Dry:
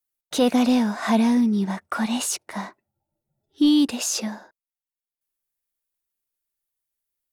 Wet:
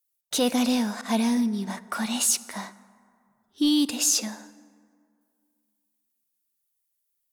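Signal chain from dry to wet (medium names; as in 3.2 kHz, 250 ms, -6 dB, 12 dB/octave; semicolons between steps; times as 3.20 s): 1.01–1.67 s: expander -19 dBFS; treble shelf 3.4 kHz +11 dB; plate-style reverb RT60 2.3 s, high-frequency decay 0.45×, DRR 16 dB; trim -5 dB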